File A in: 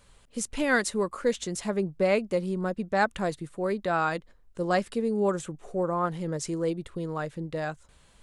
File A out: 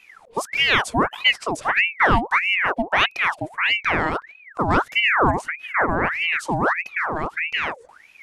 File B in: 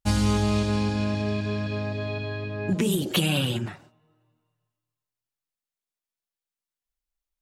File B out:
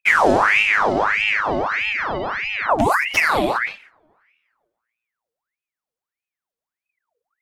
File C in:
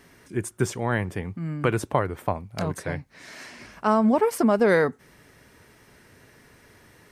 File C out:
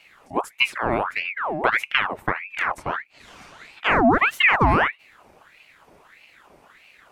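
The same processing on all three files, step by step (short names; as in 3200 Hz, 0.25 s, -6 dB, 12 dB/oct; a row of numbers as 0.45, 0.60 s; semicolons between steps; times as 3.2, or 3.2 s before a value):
tilt shelf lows +5.5 dB, about 880 Hz; ring modulator with a swept carrier 1500 Hz, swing 70%, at 1.6 Hz; normalise peaks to -3 dBFS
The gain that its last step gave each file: +7.0, +5.0, +1.5 dB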